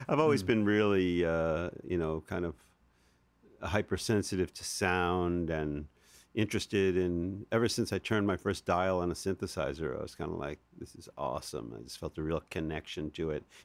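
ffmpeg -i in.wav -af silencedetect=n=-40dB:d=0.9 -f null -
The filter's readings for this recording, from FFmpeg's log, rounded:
silence_start: 2.51
silence_end: 3.63 | silence_duration: 1.12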